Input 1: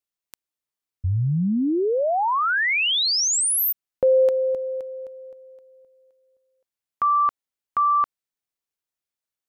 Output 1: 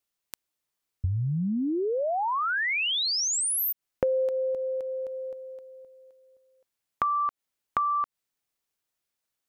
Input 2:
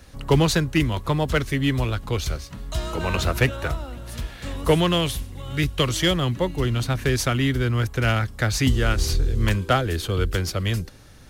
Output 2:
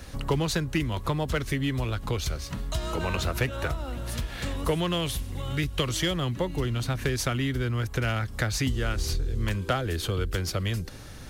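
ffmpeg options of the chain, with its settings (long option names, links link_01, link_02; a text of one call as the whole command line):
ffmpeg -i in.wav -af "acompressor=threshold=-39dB:ratio=2.5:attack=94:release=105:knee=1:detection=rms,volume=5dB" out.wav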